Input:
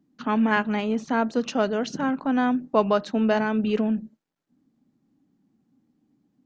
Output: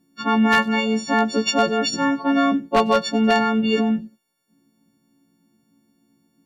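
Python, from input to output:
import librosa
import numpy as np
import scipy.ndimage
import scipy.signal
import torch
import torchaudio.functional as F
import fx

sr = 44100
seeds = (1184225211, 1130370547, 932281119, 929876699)

y = fx.freq_snap(x, sr, grid_st=4)
y = 10.0 ** (-12.5 / 20.0) * (np.abs((y / 10.0 ** (-12.5 / 20.0) + 3.0) % 4.0 - 2.0) - 1.0)
y = fx.echo_wet_highpass(y, sr, ms=95, feedback_pct=37, hz=4600.0, wet_db=-19)
y = F.gain(torch.from_numpy(y), 4.0).numpy()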